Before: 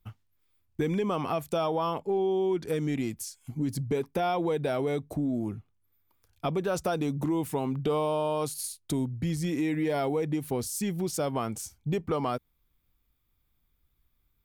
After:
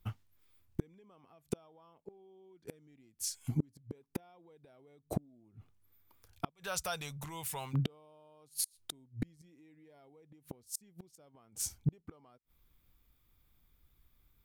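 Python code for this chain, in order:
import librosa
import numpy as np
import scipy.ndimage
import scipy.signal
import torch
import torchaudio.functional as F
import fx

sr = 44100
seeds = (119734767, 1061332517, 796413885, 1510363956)

y = fx.tone_stack(x, sr, knobs='10-0-10', at=(6.49, 7.73), fade=0.02)
y = fx.gate_flip(y, sr, shuts_db=-24.0, range_db=-36)
y = y * 10.0 ** (3.5 / 20.0)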